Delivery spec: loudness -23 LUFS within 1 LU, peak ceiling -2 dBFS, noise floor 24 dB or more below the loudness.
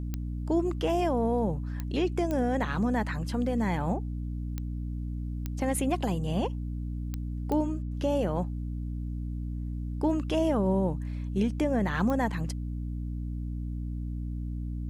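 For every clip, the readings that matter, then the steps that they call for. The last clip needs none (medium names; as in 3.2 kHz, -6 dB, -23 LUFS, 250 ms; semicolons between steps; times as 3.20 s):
clicks found 8; hum 60 Hz; highest harmonic 300 Hz; hum level -31 dBFS; loudness -30.5 LUFS; peak level -15.0 dBFS; loudness target -23.0 LUFS
-> de-click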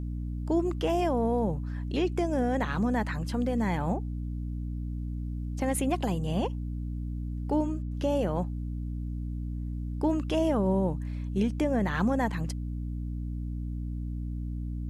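clicks found 0; hum 60 Hz; highest harmonic 300 Hz; hum level -31 dBFS
-> de-hum 60 Hz, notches 5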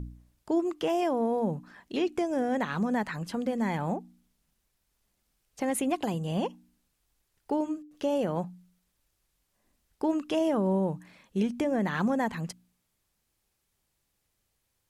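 hum not found; loudness -30.0 LUFS; peak level -16.0 dBFS; loudness target -23.0 LUFS
-> trim +7 dB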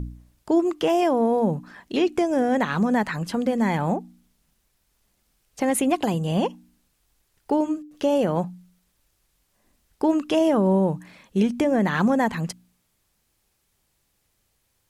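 loudness -23.0 LUFS; peak level -9.0 dBFS; noise floor -71 dBFS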